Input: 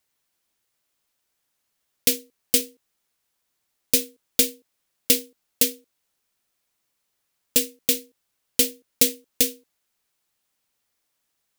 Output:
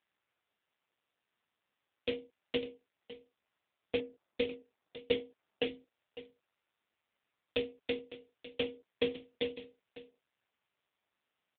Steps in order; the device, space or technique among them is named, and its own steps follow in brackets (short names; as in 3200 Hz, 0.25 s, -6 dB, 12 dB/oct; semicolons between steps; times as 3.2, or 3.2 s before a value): 4–5.65 low-pass opened by the level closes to 820 Hz, open at -20 dBFS; satellite phone (BPF 330–3200 Hz; echo 0.556 s -15.5 dB; AMR-NB 5.9 kbps 8000 Hz)